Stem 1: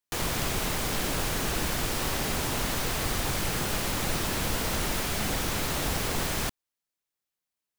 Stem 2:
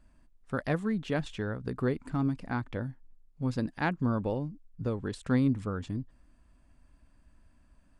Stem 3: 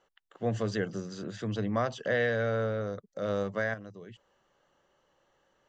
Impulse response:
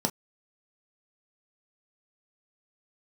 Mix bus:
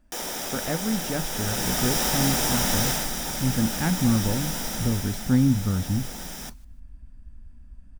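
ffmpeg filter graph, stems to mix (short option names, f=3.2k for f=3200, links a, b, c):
-filter_complex "[0:a]bass=f=250:g=-15,treble=f=4k:g=6,afade=t=in:st=1.29:d=0.69:silence=0.421697,afade=t=out:st=2.89:d=0.2:silence=0.473151,afade=t=out:st=4.55:d=0.73:silence=0.446684,asplit=3[a][b][c];[b]volume=-7dB[d];[c]volume=-22.5dB[e];[1:a]volume=-1dB,asplit=2[f][g];[g]volume=-18.5dB[h];[3:a]atrim=start_sample=2205[i];[d][h]amix=inputs=2:normalize=0[j];[j][i]afir=irnorm=-1:irlink=0[k];[e]aecho=0:1:151|302|453|604:1|0.23|0.0529|0.0122[l];[a][f][k][l]amix=inputs=4:normalize=0,asubboost=boost=9:cutoff=140"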